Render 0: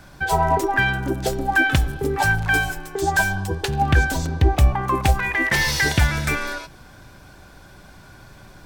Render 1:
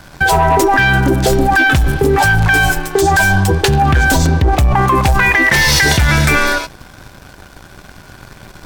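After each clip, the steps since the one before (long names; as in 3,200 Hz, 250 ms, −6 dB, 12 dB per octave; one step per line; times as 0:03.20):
leveller curve on the samples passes 2
in parallel at +2 dB: compressor whose output falls as the input rises −17 dBFS, ratio −1
on the sum: level −2.5 dB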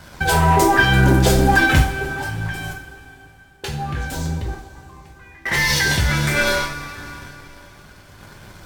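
sample-and-hold tremolo 1.1 Hz, depth 100%
coupled-rooms reverb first 0.41 s, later 3.4 s, from −18 dB, DRR −1.5 dB
level −5 dB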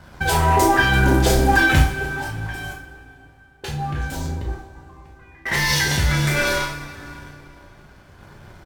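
double-tracking delay 34 ms −6.5 dB
one half of a high-frequency compander decoder only
level −2 dB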